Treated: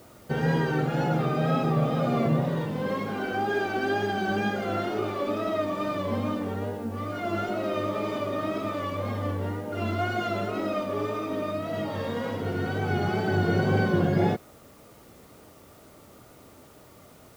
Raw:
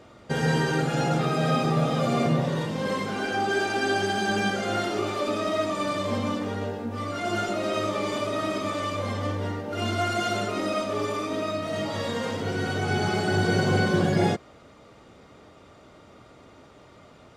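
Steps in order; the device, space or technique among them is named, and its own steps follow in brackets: cassette deck with a dirty head (tape spacing loss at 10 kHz 21 dB; wow and flutter; white noise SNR 31 dB)

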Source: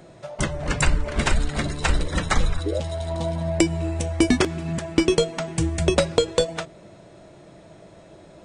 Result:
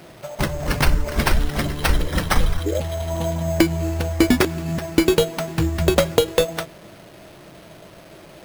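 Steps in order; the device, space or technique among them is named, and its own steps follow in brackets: early 8-bit sampler (sample-rate reducer 7100 Hz, jitter 0%; bit-crush 8-bit); gain +2.5 dB

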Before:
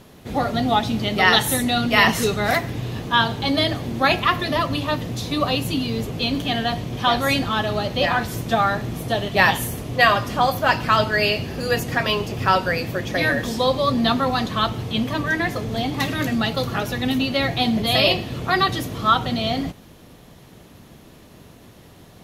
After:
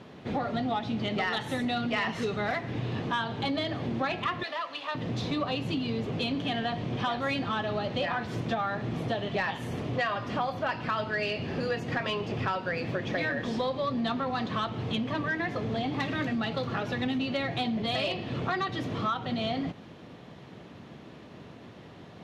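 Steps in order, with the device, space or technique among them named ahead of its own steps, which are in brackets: AM radio (BPF 110–3400 Hz; compressor 5:1, threshold -27 dBFS, peak gain reduction 14.5 dB; soft clip -19 dBFS, distortion -24 dB); 4.43–4.95 HPF 810 Hz 12 dB/oct

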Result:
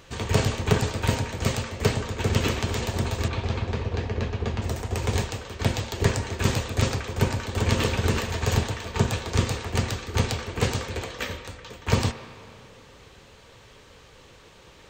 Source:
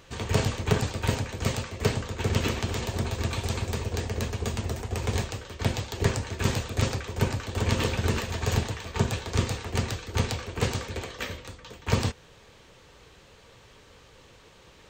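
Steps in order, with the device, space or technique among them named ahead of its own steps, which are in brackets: 3.28–4.62 air absorption 180 m; filtered reverb send (on a send: HPF 510 Hz 6 dB/oct + LPF 3500 Hz 12 dB/oct + reverb RT60 2.6 s, pre-delay 53 ms, DRR 10.5 dB); on the sum: gain +2.5 dB

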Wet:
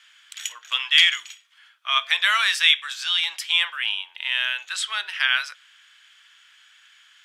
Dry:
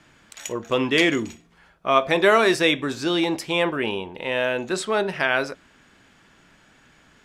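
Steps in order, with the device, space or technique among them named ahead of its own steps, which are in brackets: headphones lying on a table (HPF 1400 Hz 24 dB/oct; bell 3200 Hz +10 dB 0.31 oct); gain +2 dB

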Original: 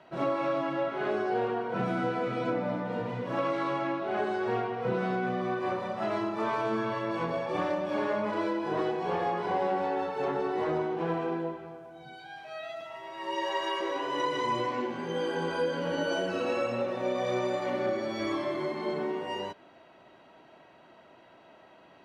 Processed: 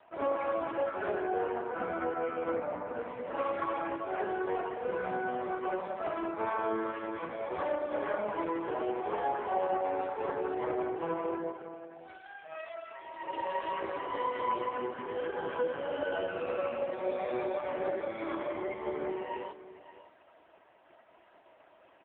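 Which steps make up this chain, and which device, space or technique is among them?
1.18–2.97 LPF 3600 Hz -> 2200 Hz 12 dB/oct; 6.9–7.4 dynamic EQ 720 Hz, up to -7 dB, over -45 dBFS, Q 1.4; satellite phone (BPF 340–3300 Hz; echo 0.566 s -15 dB; AMR-NB 4.75 kbps 8000 Hz)

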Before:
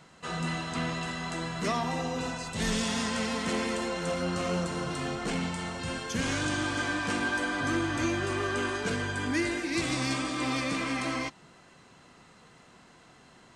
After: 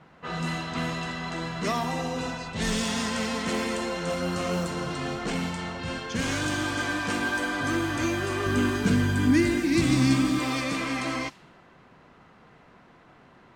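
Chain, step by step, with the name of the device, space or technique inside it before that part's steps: 8.46–10.39 resonant low shelf 350 Hz +8.5 dB, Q 1.5; cassette deck with a dynamic noise filter (white noise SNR 24 dB; low-pass opened by the level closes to 1500 Hz, open at -25.5 dBFS); gain +2 dB

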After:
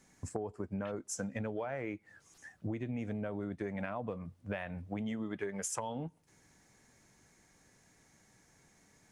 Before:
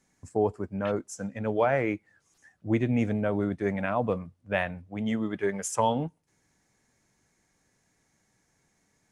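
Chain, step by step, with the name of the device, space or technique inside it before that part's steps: serial compression, peaks first (compressor, threshold -34 dBFS, peak gain reduction 14 dB; compressor 3:1, threshold -41 dBFS, peak gain reduction 8.5 dB); gain +5 dB

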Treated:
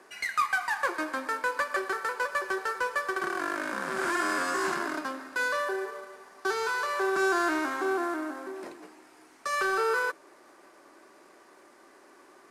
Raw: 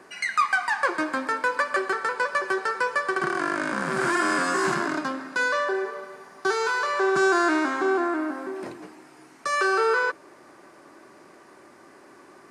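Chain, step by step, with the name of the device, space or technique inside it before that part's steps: early wireless headset (HPF 280 Hz 12 dB/oct; CVSD 64 kbps); gain -4.5 dB

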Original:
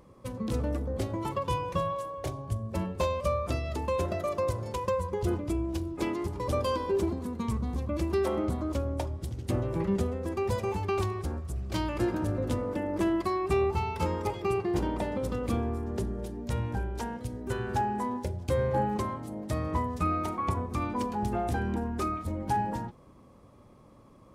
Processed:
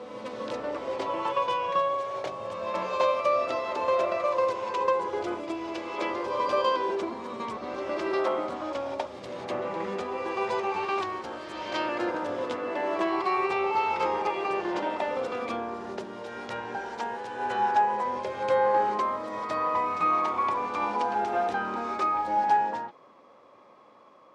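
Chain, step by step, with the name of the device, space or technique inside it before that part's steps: ghost voice (reverse; reverb RT60 2.3 s, pre-delay 57 ms, DRR 3 dB; reverse; HPF 610 Hz 12 dB/oct); air absorption 160 m; gain +7 dB

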